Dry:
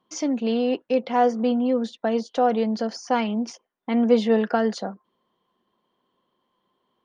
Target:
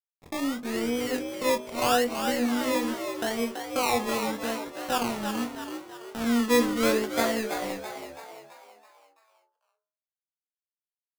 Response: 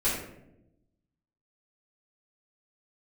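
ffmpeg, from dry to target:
-filter_complex "[0:a]agate=range=-11dB:threshold=-33dB:ratio=16:detection=peak,aeval=exprs='sgn(val(0))*max(abs(val(0))-0.0178,0)':channel_layout=same,atempo=0.63,acrusher=samples=23:mix=1:aa=0.000001:lfo=1:lforange=13.8:lforate=0.8,asplit=2[link_01][link_02];[link_02]adelay=25,volume=-9dB[link_03];[link_01][link_03]amix=inputs=2:normalize=0,bandreject=frequency=49.53:width_type=h:width=4,bandreject=frequency=99.06:width_type=h:width=4,bandreject=frequency=148.59:width_type=h:width=4,bandreject=frequency=198.12:width_type=h:width=4,bandreject=frequency=247.65:width_type=h:width=4,bandreject=frequency=297.18:width_type=h:width=4,bandreject=frequency=346.71:width_type=h:width=4,bandreject=frequency=396.24:width_type=h:width=4,bandreject=frequency=445.77:width_type=h:width=4,bandreject=frequency=495.3:width_type=h:width=4,bandreject=frequency=544.83:width_type=h:width=4,bandreject=frequency=594.36:width_type=h:width=4,bandreject=frequency=643.89:width_type=h:width=4,bandreject=frequency=693.42:width_type=h:width=4,bandreject=frequency=742.95:width_type=h:width=4,bandreject=frequency=792.48:width_type=h:width=4,bandreject=frequency=842.01:width_type=h:width=4,bandreject=frequency=891.54:width_type=h:width=4,bandreject=frequency=941.07:width_type=h:width=4,bandreject=frequency=990.6:width_type=h:width=4,bandreject=frequency=1040.13:width_type=h:width=4,bandreject=frequency=1089.66:width_type=h:width=4,bandreject=frequency=1139.19:width_type=h:width=4,bandreject=frequency=1188.72:width_type=h:width=4,bandreject=frequency=1238.25:width_type=h:width=4,asplit=7[link_04][link_05][link_06][link_07][link_08][link_09][link_10];[link_05]adelay=331,afreqshift=71,volume=-7dB[link_11];[link_06]adelay=662,afreqshift=142,volume=-13.4dB[link_12];[link_07]adelay=993,afreqshift=213,volume=-19.8dB[link_13];[link_08]adelay=1324,afreqshift=284,volume=-26.1dB[link_14];[link_09]adelay=1655,afreqshift=355,volume=-32.5dB[link_15];[link_10]adelay=1986,afreqshift=426,volume=-38.9dB[link_16];[link_04][link_11][link_12][link_13][link_14][link_15][link_16]amix=inputs=7:normalize=0,volume=-4.5dB"

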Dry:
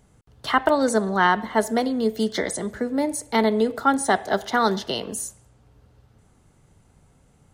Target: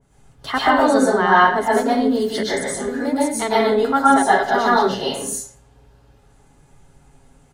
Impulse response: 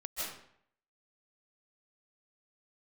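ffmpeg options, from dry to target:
-filter_complex "[0:a]aecho=1:1:7.3:0.4,asettb=1/sr,asplit=3[link_01][link_02][link_03];[link_01]atrim=end=2.434[link_04];[link_02]atrim=start=2.43:end=4.43,asetpts=PTS-STARTPTS,afade=type=in:duration=0.004:curve=qsin,afade=type=out:start_time=1.996:duration=0.004:curve=qsin,acrossover=split=290[link_05][link_06];[link_06]adelay=70[link_07];[link_05][link_07]amix=inputs=2:normalize=0,atrim=end_sample=88200[link_08];[link_03]atrim=start=4.426[link_09];[link_04][link_08]acrossfade=duration=0.004:curve1=hsin:curve2=qsin[link_10];[link_10][link_09]acrossfade=duration=0.004:curve1=qsin:curve2=hsin[link_11];[1:a]atrim=start_sample=2205,afade=type=out:start_time=0.42:duration=0.01,atrim=end_sample=18963,asetrate=57330,aresample=44100[link_12];[link_11][link_12]afir=irnorm=-1:irlink=0,adynamicequalizer=threshold=0.0178:dfrequency=2100:dqfactor=0.7:tfrequency=2100:tqfactor=0.7:attack=5:release=100:ratio=0.375:range=2.5:mode=cutabove:tftype=highshelf,volume=5.5dB"

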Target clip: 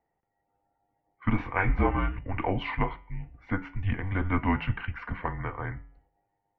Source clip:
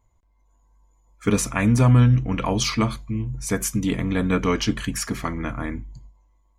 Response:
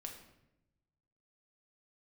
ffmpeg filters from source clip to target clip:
-filter_complex "[0:a]asettb=1/sr,asplit=3[link_01][link_02][link_03];[link_01]atrim=end=1.374[link_04];[link_02]atrim=start=1.37:end=2.18,asetpts=PTS-STARTPTS,afade=type=in:duration=0.004:curve=qsin,afade=type=out:start_time=0.806:duration=0.004:curve=qsin,asplit=2[link_05][link_06];[link_06]adelay=22,volume=-2dB[link_07];[link_05][link_07]amix=inputs=2:normalize=0,atrim=end_sample=35721[link_08];[link_03]atrim=start=2.176[link_09];[link_04][link_08]acrossfade=duration=0.004:curve1=hsin:curve2=qsin[link_10];[link_10][link_09]acrossfade=duration=0.004:curve1=qsin:curve2=hsin,bandreject=frequency=117.7:width_type=h:width=4,bandreject=frequency=235.4:width_type=h:width=4,bandreject=frequency=353.1:width_type=h:width=4,bandreject=frequency=470.8:width_type=h:width=4,bandreject=frequency=588.5:width_type=h:width=4,bandreject=frequency=706.2:width_type=h:width=4,bandreject=frequency=823.9:width_type=h:width=4,bandreject=frequency=941.6:width_type=h:width=4,bandreject=frequency=1059.3:width_type=h:width=4,bandreject=frequency=1177:width_type=h:width=4,bandreject=frequency=1294.7:width_type=h:width=4,bandreject=frequency=1412.4:width_type=h:width=4,bandreject=frequency=1530.1:width_type=h:width=4,bandreject=frequency=1647.8:width_type=h:width=4,bandreject=frequency=1765.5:width_type=h:width=4,bandreject=frequency=1883.2:width_type=h:width=4,bandreject=frequency=2000.9:width_type=h:width=4,bandreject=frequency=2118.6:width_type=h:width=4,bandreject=frequency=2236.3:width_type=h:width=4,bandreject=frequency=2354:width_type=h:width=4,bandreject=frequency=2471.7:width_type=h:width=4,bandreject=frequency=2589.4:width_type=h:width=4,bandreject=frequency=2707.1:width_type=h:width=4,bandreject=frequency=2824.8:width_type=h:width=4,bandreject=frequency=2942.5:width_type=h:width=4,bandreject=frequency=3060.2:width_type=h:width=4,bandreject=frequency=3177.9:width_type=h:width=4,bandreject=frequency=3295.6:width_type=h:width=4,bandreject=frequency=3413.3:width_type=h:width=4,highpass=frequency=220:width_type=q:width=0.5412,highpass=frequency=220:width_type=q:width=1.307,lowpass=frequency=2700:width_type=q:width=0.5176,lowpass=frequency=2700:width_type=q:width=0.7071,lowpass=frequency=2700:width_type=q:width=1.932,afreqshift=-190,volume=-2.5dB"

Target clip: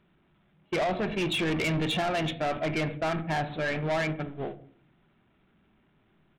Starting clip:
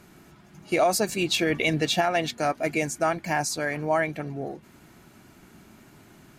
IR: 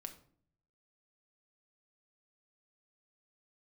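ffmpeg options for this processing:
-filter_complex "[0:a]aeval=exprs='val(0)+0.5*0.015*sgn(val(0))':channel_layout=same,agate=range=-28dB:threshold=-29dB:ratio=16:detection=peak,aresample=8000,aresample=44100,asplit=2[link_01][link_02];[1:a]atrim=start_sample=2205,lowshelf=frequency=130:gain=7.5[link_03];[link_02][link_03]afir=irnorm=-1:irlink=0,volume=5.5dB[link_04];[link_01][link_04]amix=inputs=2:normalize=0,asoftclip=type=tanh:threshold=-19.5dB,volume=-5dB"

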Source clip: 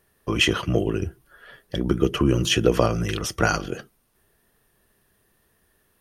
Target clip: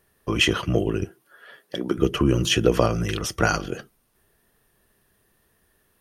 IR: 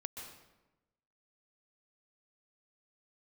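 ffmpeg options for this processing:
-filter_complex "[0:a]asettb=1/sr,asplit=3[link_01][link_02][link_03];[link_01]atrim=end=1.054[link_04];[link_02]atrim=start=1.05:end=1.98,asetpts=PTS-STARTPTS,afade=type=in:duration=0.004:curve=qsin,afade=type=out:start_time=0.926:duration=0.004:curve=qsin,highpass=260[link_05];[link_03]atrim=start=1.976[link_06];[link_04][link_05]acrossfade=duration=0.004:curve1=hsin:curve2=qsin[link_07];[link_07][link_06]acrossfade=duration=0.004:curve1=qsin:curve2=hsin"

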